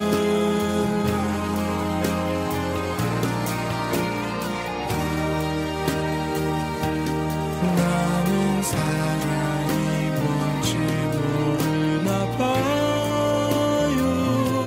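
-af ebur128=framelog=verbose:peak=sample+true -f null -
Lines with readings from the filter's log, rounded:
Integrated loudness:
  I:         -23.2 LUFS
  Threshold: -33.2 LUFS
Loudness range:
  LRA:         3.1 LU
  Threshold: -43.5 LUFS
  LRA low:   -25.0 LUFS
  LRA high:  -22.0 LUFS
Sample peak:
  Peak:       -7.3 dBFS
True peak:
  Peak:       -7.3 dBFS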